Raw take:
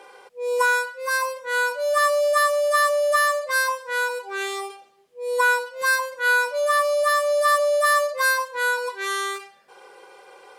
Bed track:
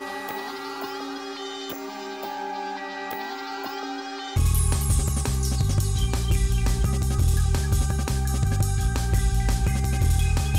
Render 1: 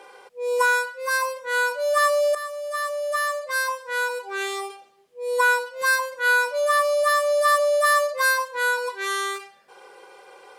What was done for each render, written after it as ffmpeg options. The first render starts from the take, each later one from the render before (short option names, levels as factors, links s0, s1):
-filter_complex "[0:a]asplit=2[s0][s1];[s0]atrim=end=2.35,asetpts=PTS-STARTPTS,afade=t=out:st=2.346:d=0.004:c=hsin:silence=0.199526[s2];[s1]atrim=start=2.35,asetpts=PTS-STARTPTS,afade=t=in:d=1.92:silence=0.199526[s3];[s2][s3]concat=n=2:v=0:a=1"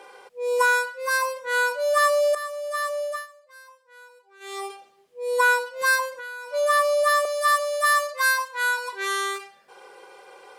-filter_complex "[0:a]asplit=3[s0][s1][s2];[s0]afade=t=out:st=6.11:d=0.02[s3];[s1]acompressor=threshold=0.02:ratio=10:attack=3.2:release=140:knee=1:detection=peak,afade=t=in:st=6.11:d=0.02,afade=t=out:st=6.52:d=0.02[s4];[s2]afade=t=in:st=6.52:d=0.02[s5];[s3][s4][s5]amix=inputs=3:normalize=0,asettb=1/sr,asplit=3[s6][s7][s8];[s6]atrim=end=7.254[s9];[s7]atrim=start=7.25:end=8.93,asetpts=PTS-STARTPTS,afade=t=in:d=0.004:c=qsin,afade=t=out:st=1.676:d=0.004:c=qsin,highpass=820[s10];[s8]atrim=start=8.926[s11];[s9][s10]acrossfade=d=0.004:c1=hsin:c2=qsin[s12];[s12][s11]acrossfade=d=0.004:c1=qsin:c2=hsin,asplit=3[s13][s14][s15];[s13]atrim=end=3.27,asetpts=PTS-STARTPTS,afade=t=out:st=3.01:d=0.26:silence=0.0668344[s16];[s14]atrim=start=3.27:end=4.4,asetpts=PTS-STARTPTS,volume=0.0668[s17];[s15]atrim=start=4.4,asetpts=PTS-STARTPTS,afade=t=in:d=0.26:silence=0.0668344[s18];[s16][s17][s18]concat=n=3:v=0:a=1"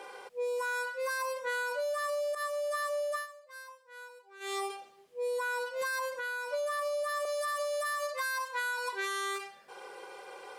-af "alimiter=limit=0.0794:level=0:latency=1:release=67,acompressor=threshold=0.0282:ratio=6"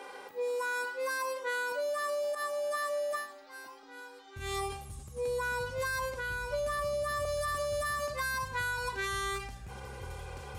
-filter_complex "[1:a]volume=0.0668[s0];[0:a][s0]amix=inputs=2:normalize=0"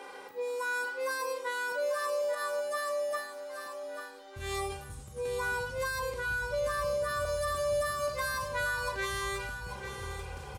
-filter_complex "[0:a]asplit=2[s0][s1];[s1]adelay=36,volume=0.251[s2];[s0][s2]amix=inputs=2:normalize=0,aecho=1:1:840|1680|2520:0.355|0.0781|0.0172"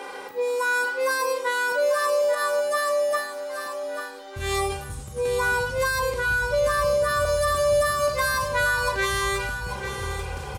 -af "volume=2.99"